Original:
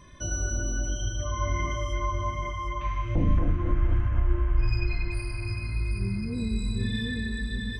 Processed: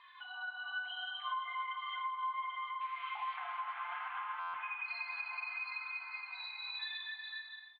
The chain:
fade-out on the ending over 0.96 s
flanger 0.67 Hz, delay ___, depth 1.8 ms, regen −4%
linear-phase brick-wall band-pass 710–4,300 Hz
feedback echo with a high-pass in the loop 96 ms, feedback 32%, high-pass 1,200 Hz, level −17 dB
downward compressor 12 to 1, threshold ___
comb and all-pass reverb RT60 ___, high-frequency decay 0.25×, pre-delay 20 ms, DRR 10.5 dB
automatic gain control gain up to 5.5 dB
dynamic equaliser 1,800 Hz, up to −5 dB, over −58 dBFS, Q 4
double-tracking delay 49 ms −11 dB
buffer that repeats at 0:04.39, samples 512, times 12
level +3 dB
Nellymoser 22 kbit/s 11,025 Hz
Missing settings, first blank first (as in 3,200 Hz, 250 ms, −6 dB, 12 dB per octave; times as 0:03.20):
4.3 ms, −44 dBFS, 3.7 s